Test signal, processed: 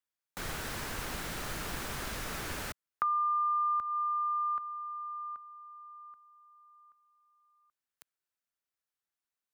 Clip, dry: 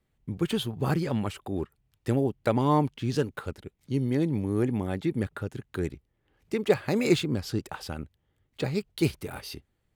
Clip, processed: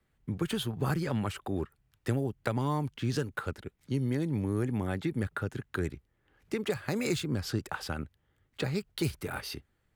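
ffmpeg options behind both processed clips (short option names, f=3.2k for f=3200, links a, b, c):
-filter_complex "[0:a]equalizer=f=1.5k:w=1.5:g=6,acrossover=split=130|4900[a][b][c];[b]acompressor=threshold=-29dB:ratio=6[d];[a][d][c]amix=inputs=3:normalize=0"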